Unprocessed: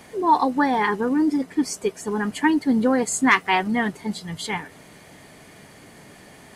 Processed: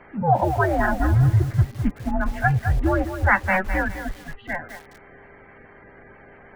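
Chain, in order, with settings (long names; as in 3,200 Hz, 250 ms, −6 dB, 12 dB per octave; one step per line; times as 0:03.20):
spectral magnitudes quantised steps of 30 dB
0:00.78–0:02.42: low shelf with overshoot 160 Hz −10.5 dB, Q 3
single-sideband voice off tune −180 Hz 160–2,500 Hz
hum with harmonics 400 Hz, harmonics 6, −55 dBFS −6 dB per octave
feedback echo at a low word length 207 ms, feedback 35%, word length 6 bits, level −9 dB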